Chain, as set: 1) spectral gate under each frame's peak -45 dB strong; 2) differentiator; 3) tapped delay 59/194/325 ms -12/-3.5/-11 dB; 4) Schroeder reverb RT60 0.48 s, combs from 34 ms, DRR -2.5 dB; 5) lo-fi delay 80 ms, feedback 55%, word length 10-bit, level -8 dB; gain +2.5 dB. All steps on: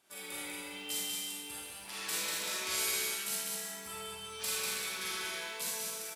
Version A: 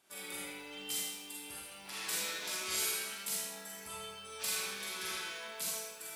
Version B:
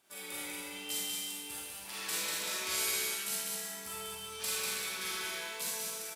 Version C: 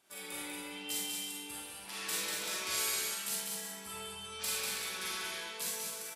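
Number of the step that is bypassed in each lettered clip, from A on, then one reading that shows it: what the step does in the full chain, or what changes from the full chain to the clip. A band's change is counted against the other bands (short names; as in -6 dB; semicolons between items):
3, loudness change -2.0 LU; 1, momentary loudness spread change -1 LU; 5, 250 Hz band +2.0 dB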